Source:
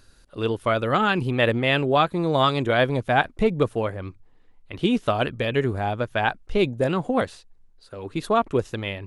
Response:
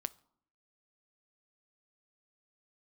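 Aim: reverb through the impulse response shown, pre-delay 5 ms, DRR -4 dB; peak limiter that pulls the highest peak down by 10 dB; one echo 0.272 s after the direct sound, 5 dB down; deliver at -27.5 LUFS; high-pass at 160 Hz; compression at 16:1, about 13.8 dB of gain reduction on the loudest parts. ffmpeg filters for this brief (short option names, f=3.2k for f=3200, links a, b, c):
-filter_complex "[0:a]highpass=160,acompressor=threshold=-29dB:ratio=16,alimiter=level_in=2.5dB:limit=-24dB:level=0:latency=1,volume=-2.5dB,aecho=1:1:272:0.562,asplit=2[a][b];[1:a]atrim=start_sample=2205,adelay=5[c];[b][c]afir=irnorm=-1:irlink=0,volume=5dB[d];[a][d]amix=inputs=2:normalize=0,volume=4.5dB"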